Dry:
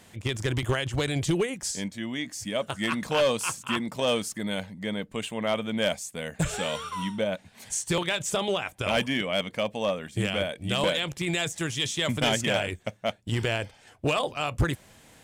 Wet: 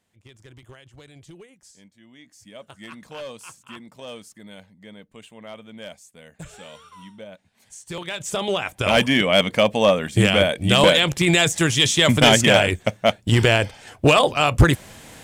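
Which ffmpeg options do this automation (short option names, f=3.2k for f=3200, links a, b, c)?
-af "volume=11dB,afade=t=in:st=1.98:d=0.67:silence=0.421697,afade=t=in:st=7.79:d=0.42:silence=0.281838,afade=t=in:st=8.21:d=1.21:silence=0.251189"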